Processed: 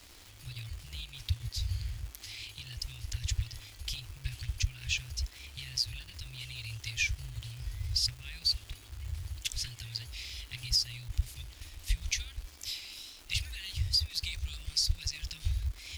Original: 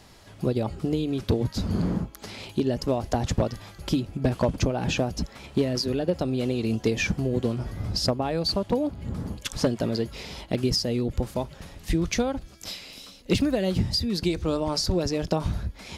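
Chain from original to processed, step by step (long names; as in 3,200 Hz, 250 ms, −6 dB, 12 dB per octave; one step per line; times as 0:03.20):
inverse Chebyshev band-stop filter 200–1,000 Hz, stop band 50 dB
surface crackle 560 per second −41 dBFS
parametric band 300 Hz +7 dB 0.58 octaves
level −1.5 dB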